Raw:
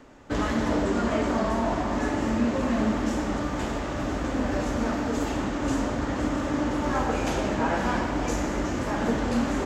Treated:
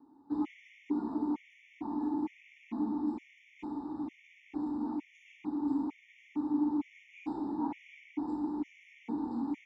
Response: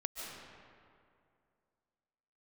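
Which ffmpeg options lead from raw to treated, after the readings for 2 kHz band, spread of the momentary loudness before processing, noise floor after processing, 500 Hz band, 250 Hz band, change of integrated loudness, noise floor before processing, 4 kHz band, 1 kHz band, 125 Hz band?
-22.5 dB, 4 LU, -62 dBFS, -19.5 dB, -7.0 dB, -9.5 dB, -31 dBFS, under -20 dB, -14.5 dB, -24.0 dB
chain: -filter_complex "[0:a]asplit=3[a][b][c];[a]bandpass=f=300:t=q:w=8,volume=0dB[d];[b]bandpass=f=870:t=q:w=8,volume=-6dB[e];[c]bandpass=f=2.24k:t=q:w=8,volume=-9dB[f];[d][e][f]amix=inputs=3:normalize=0,afftfilt=real='re*gt(sin(2*PI*1.1*pts/sr)*(1-2*mod(floor(b*sr/1024/1800),2)),0)':imag='im*gt(sin(2*PI*1.1*pts/sr)*(1-2*mod(floor(b*sr/1024/1800),2)),0)':win_size=1024:overlap=0.75"

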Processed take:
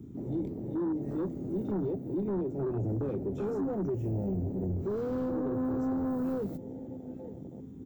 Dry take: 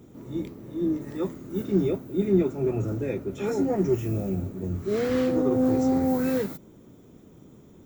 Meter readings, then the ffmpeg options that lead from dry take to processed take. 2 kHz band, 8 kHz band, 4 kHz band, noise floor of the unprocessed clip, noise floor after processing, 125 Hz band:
-13.5 dB, under -15 dB, under -20 dB, -52 dBFS, -45 dBFS, -4.0 dB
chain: -filter_complex "[0:a]acompressor=threshold=-31dB:ratio=2.5,asplit=2[a][b];[b]adelay=873,lowpass=f=3.3k:p=1,volume=-19.5dB,asplit=2[c][d];[d]adelay=873,lowpass=f=3.3k:p=1,volume=0.51,asplit=2[e][f];[f]adelay=873,lowpass=f=3.3k:p=1,volume=0.51,asplit=2[g][h];[h]adelay=873,lowpass=f=3.3k:p=1,volume=0.51[i];[a][c][e][g][i]amix=inputs=5:normalize=0,asoftclip=type=tanh:threshold=-32.5dB,afwtdn=0.00794,acrossover=split=480|3000[j][k][l];[k]acompressor=threshold=-49dB:ratio=2.5[m];[j][m][l]amix=inputs=3:normalize=0,volume=5.5dB"

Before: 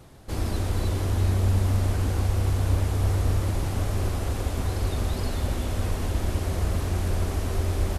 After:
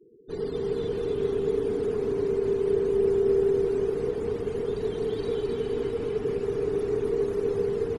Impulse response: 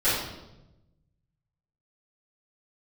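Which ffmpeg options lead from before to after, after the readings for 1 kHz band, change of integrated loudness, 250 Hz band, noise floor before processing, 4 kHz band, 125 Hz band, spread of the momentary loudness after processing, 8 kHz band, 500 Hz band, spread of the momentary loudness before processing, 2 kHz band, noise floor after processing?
-8.0 dB, -0.5 dB, +0.5 dB, -31 dBFS, n/a, -15.5 dB, 6 LU, under -15 dB, +12.0 dB, 5 LU, -7.5 dB, -36 dBFS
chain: -af "afftfilt=real='re*gte(hypot(re,im),0.0112)':imag='im*gte(hypot(re,im),0.0112)':win_size=1024:overlap=0.75,aecho=1:1:260|468|634.4|767.5|874:0.631|0.398|0.251|0.158|0.1,afreqshift=-490,volume=-4.5dB"

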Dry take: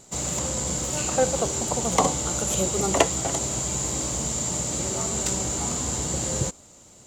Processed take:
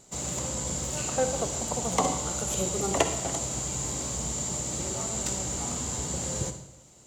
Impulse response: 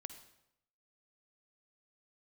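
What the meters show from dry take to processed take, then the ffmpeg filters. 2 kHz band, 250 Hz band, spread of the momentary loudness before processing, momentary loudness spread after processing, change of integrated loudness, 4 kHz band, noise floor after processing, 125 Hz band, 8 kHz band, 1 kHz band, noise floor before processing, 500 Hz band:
-4.5 dB, -4.5 dB, 4 LU, 4 LU, -4.5 dB, -4.5 dB, -54 dBFS, -4.0 dB, -4.5 dB, -4.5 dB, -51 dBFS, -4.5 dB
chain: -filter_complex "[1:a]atrim=start_sample=2205[a];[0:a][a]afir=irnorm=-1:irlink=0"

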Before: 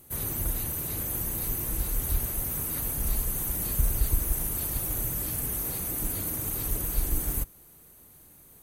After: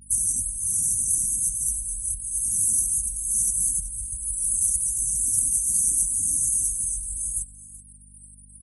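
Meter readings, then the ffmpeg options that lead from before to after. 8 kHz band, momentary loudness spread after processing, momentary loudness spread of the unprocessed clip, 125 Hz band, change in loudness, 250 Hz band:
+13.5 dB, 7 LU, 2 LU, -9.0 dB, +7.0 dB, under -10 dB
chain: -filter_complex "[0:a]flanger=delay=18.5:depth=5.4:speed=1.2,equalizer=f=125:t=o:w=1:g=-6,equalizer=f=250:t=o:w=1:g=5,equalizer=f=500:t=o:w=1:g=-8,equalizer=f=1k:t=o:w=1:g=6,equalizer=f=2k:t=o:w=1:g=-6,equalizer=f=4k:t=o:w=1:g=-7,equalizer=f=8k:t=o:w=1:g=-5,aresample=22050,aresample=44100,acompressor=threshold=-42dB:ratio=6,aexciter=amount=15.4:drive=5.3:freq=4.7k,asuperstop=centerf=820:order=4:qfactor=1.1,equalizer=f=320:w=2.6:g=-7,afftfilt=real='re*gte(hypot(re,im),0.0178)':imag='im*gte(hypot(re,im),0.0178)':win_size=1024:overlap=0.75,aeval=exprs='val(0)+0.00141*(sin(2*PI*50*n/s)+sin(2*PI*2*50*n/s)/2+sin(2*PI*3*50*n/s)/3+sin(2*PI*4*50*n/s)/4+sin(2*PI*5*50*n/s)/5)':c=same,asplit=2[a][b];[b]aecho=0:1:379:0.15[c];[a][c]amix=inputs=2:normalize=0,volume=5.5dB"

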